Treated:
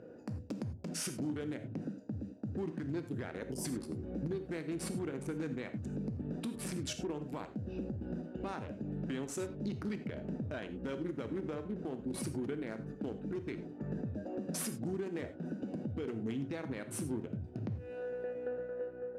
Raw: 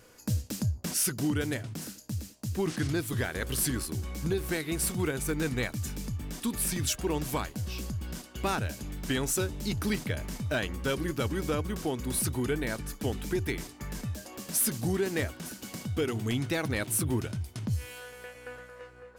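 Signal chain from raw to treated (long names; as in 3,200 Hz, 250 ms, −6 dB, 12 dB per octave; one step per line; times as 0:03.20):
adaptive Wiener filter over 41 samples
high-pass filter 190 Hz 12 dB per octave
gain on a spectral selection 0:03.42–0:03.65, 1,000–4,600 Hz −16 dB
low-pass filter 7,800 Hz 12 dB per octave
high-shelf EQ 2,200 Hz −10.5 dB
downward compressor 5 to 1, threshold −47 dBFS, peak gain reduction 18 dB
brickwall limiter −41 dBFS, peak gain reduction 8.5 dB
reverb whose tail is shaped and stops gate 120 ms flat, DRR 8.5 dB
level +11.5 dB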